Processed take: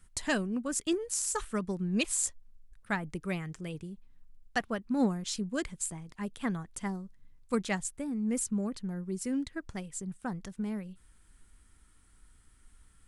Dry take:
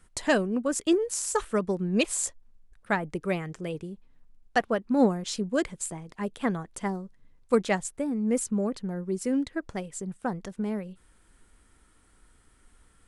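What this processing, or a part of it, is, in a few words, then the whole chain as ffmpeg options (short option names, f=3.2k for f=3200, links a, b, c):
smiley-face EQ: -af "lowshelf=f=150:g=5.5,equalizer=f=520:t=o:w=1.5:g=-7,highshelf=f=5.7k:g=4.5,volume=-4dB"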